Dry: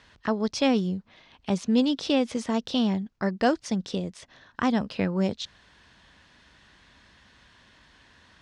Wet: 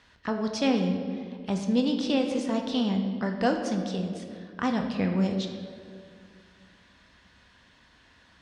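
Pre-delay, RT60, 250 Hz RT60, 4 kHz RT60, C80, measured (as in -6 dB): 4 ms, 2.2 s, 2.5 s, 1.3 s, 7.0 dB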